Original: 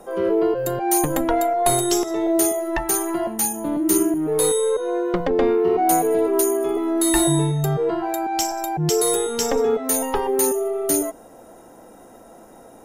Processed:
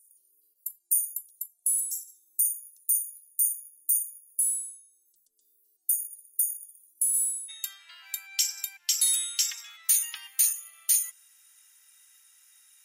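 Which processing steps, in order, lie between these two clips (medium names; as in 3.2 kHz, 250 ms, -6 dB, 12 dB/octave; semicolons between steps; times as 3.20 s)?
inverse Chebyshev high-pass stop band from 2.3 kHz, stop band 70 dB, from 7.48 s stop band from 510 Hz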